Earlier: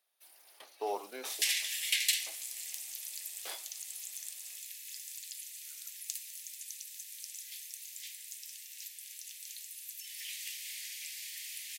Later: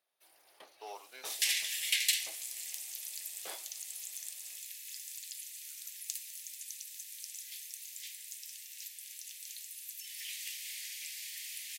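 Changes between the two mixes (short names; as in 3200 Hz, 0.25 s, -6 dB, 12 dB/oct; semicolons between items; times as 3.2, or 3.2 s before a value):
speech: add band-pass 4200 Hz, Q 0.52; first sound: add tilt -2 dB/oct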